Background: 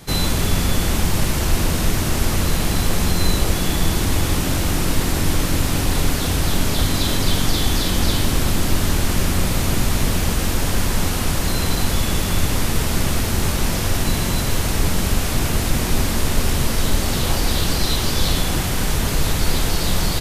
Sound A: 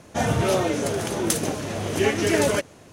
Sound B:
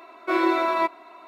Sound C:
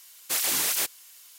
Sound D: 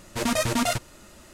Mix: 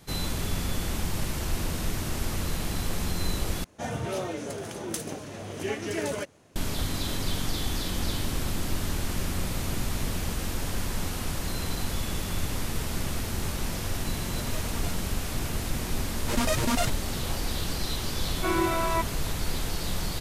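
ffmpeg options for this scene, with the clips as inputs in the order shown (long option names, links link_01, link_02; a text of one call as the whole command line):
ffmpeg -i bed.wav -i cue0.wav -i cue1.wav -i cue2.wav -i cue3.wav -filter_complex "[4:a]asplit=2[link_01][link_02];[0:a]volume=-11dB[link_03];[link_01]acompressor=threshold=-30dB:ratio=6:attack=3.2:release=140:knee=1:detection=peak[link_04];[link_03]asplit=2[link_05][link_06];[link_05]atrim=end=3.644[link_07];[1:a]atrim=end=2.92,asetpts=PTS-STARTPTS,volume=-10dB[link_08];[link_06]atrim=start=6.556[link_09];[link_04]atrim=end=1.33,asetpts=PTS-STARTPTS,volume=-7.5dB,afade=type=in:duration=0.004:curve=hsin,afade=type=out:start_time=1.326:duration=0.004:curve=hsin,adelay=14180[link_10];[link_02]atrim=end=1.33,asetpts=PTS-STARTPTS,volume=-3dB,afade=type=in:duration=0.004:curve=hsin,afade=type=out:start_time=1.326:duration=0.004:curve=hsin,adelay=16120[link_11];[2:a]atrim=end=1.27,asetpts=PTS-STARTPTS,volume=-5dB,afade=type=in:duration=0.004:curve=hsin,afade=type=out:start_time=1.266:duration=0.004:curve=hsin,adelay=18150[link_12];[link_07][link_08]acrossfade=duration=0.004:curve1=hsin:curve2=hsin[link_13];[link_13][link_09]acrossfade=duration=0.004:curve1=hsin:curve2=hsin[link_14];[link_14][link_10][link_11][link_12]amix=inputs=4:normalize=0" out.wav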